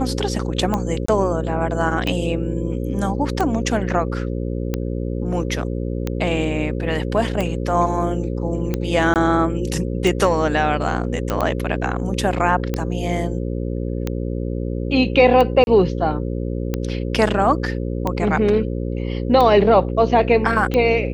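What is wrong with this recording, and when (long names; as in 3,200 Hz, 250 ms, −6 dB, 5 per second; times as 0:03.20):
mains buzz 60 Hz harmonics 9 −24 dBFS
scratch tick 45 rpm −9 dBFS
0:01.06–0:01.08: drop-out 24 ms
0:09.14–0:09.16: drop-out 18 ms
0:11.30: click −8 dBFS
0:15.64–0:15.67: drop-out 31 ms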